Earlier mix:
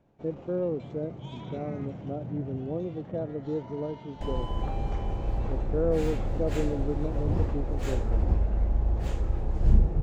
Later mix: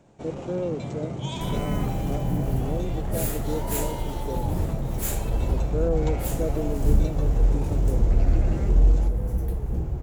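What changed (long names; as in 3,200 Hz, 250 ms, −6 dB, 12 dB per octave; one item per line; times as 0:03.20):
first sound +9.5 dB
second sound: entry −2.80 s
master: remove high-frequency loss of the air 170 metres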